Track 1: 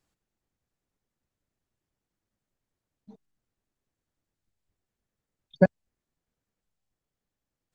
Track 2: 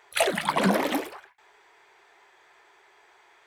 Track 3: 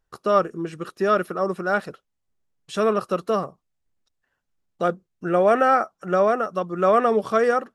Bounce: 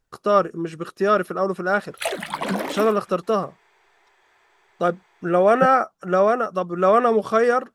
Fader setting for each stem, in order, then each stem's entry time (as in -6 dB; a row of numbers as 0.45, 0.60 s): -5.0, -2.5, +1.5 dB; 0.00, 1.85, 0.00 s